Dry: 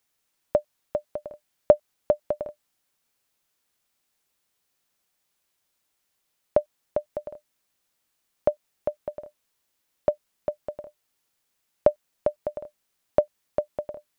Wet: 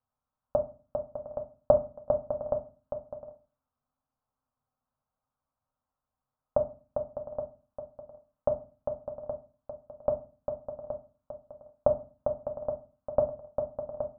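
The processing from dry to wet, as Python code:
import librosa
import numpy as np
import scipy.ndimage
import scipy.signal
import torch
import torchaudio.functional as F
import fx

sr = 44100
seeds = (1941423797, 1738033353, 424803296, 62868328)

y = scipy.signal.sosfilt(scipy.signal.butter(4, 1300.0, 'lowpass', fs=sr, output='sos'), x)
y = fx.peak_eq(y, sr, hz=760.0, db=-4.5, octaves=0.72)
y = fx.fixed_phaser(y, sr, hz=870.0, stages=4)
y = y + 10.0 ** (-9.0 / 20.0) * np.pad(y, (int(821 * sr / 1000.0), 0))[:len(y)]
y = fx.rev_fdn(y, sr, rt60_s=0.36, lf_ratio=1.4, hf_ratio=0.3, size_ms=23.0, drr_db=4.0)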